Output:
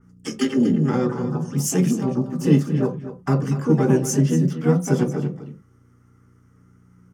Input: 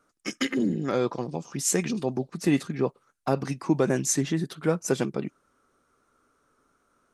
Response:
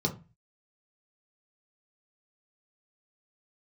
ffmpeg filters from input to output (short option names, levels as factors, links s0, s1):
-filter_complex "[0:a]aeval=exprs='val(0)+0.00112*(sin(2*PI*60*n/s)+sin(2*PI*2*60*n/s)/2+sin(2*PI*3*60*n/s)/3+sin(2*PI*4*60*n/s)/4+sin(2*PI*5*60*n/s)/5)':c=same,asplit=2[s0][s1];[s1]asetrate=66075,aresample=44100,atempo=0.66742,volume=0.562[s2];[s0][s2]amix=inputs=2:normalize=0,aecho=1:1:239:0.251,asplit=2[s3][s4];[1:a]atrim=start_sample=2205,afade=t=out:st=0.17:d=0.01,atrim=end_sample=7938[s5];[s4][s5]afir=irnorm=-1:irlink=0,volume=0.355[s6];[s3][s6]amix=inputs=2:normalize=0,adynamicequalizer=threshold=0.00794:dfrequency=2700:dqfactor=0.7:tfrequency=2700:tqfactor=0.7:attack=5:release=100:ratio=0.375:range=2:mode=cutabove:tftype=highshelf"